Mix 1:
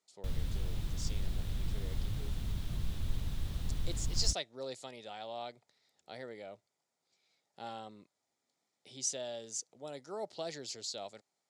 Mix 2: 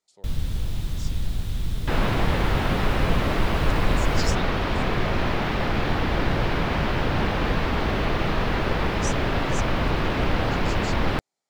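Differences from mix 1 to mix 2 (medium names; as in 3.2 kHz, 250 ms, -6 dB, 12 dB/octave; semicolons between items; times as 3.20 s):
first sound +9.0 dB; second sound: unmuted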